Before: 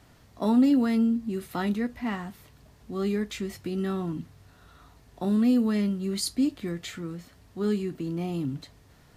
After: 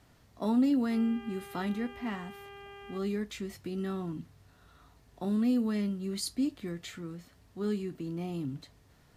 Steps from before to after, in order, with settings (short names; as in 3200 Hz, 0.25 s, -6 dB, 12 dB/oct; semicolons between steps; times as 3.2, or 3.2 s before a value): 0.9–2.97 buzz 400 Hz, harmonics 8, -43 dBFS -4 dB/oct; gain -5.5 dB